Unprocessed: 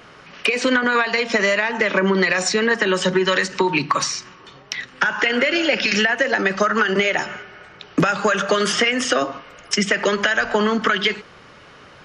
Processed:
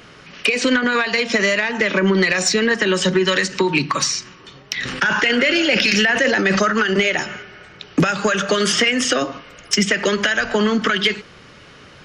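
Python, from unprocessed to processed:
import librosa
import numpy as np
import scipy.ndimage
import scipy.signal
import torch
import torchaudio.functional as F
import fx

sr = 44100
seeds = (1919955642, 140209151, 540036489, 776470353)

y = fx.peak_eq(x, sr, hz=900.0, db=-7.0, octaves=2.0)
y = 10.0 ** (-8.5 / 20.0) * np.tanh(y / 10.0 ** (-8.5 / 20.0))
y = fx.sustainer(y, sr, db_per_s=26.0, at=(4.76, 6.69), fade=0.02)
y = F.gain(torch.from_numpy(y), 4.5).numpy()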